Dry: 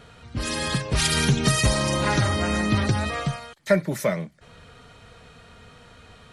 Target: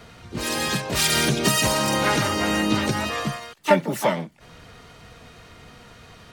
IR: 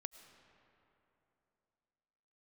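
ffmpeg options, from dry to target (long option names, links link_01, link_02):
-filter_complex "[0:a]acrossover=split=160|3000[link_01][link_02][link_03];[link_01]acompressor=threshold=-47dB:ratio=2[link_04];[link_04][link_02][link_03]amix=inputs=3:normalize=0,asplit=3[link_05][link_06][link_07];[link_06]asetrate=66075,aresample=44100,atempo=0.66742,volume=-4dB[link_08];[link_07]asetrate=88200,aresample=44100,atempo=0.5,volume=-17dB[link_09];[link_05][link_08][link_09]amix=inputs=3:normalize=0,volume=1dB"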